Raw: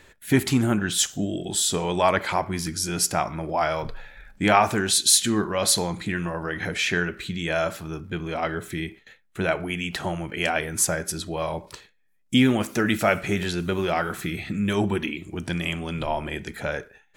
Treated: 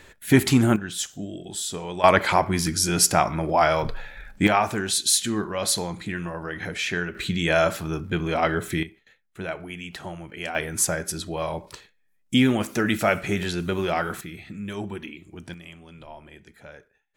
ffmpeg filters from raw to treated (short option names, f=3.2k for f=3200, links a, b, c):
-af "asetnsamples=n=441:p=0,asendcmd='0.76 volume volume -7dB;2.04 volume volume 4.5dB;4.47 volume volume -3dB;7.15 volume volume 4.5dB;8.83 volume volume -7.5dB;10.55 volume volume -0.5dB;14.21 volume volume -9dB;15.54 volume volume -16dB',volume=3dB"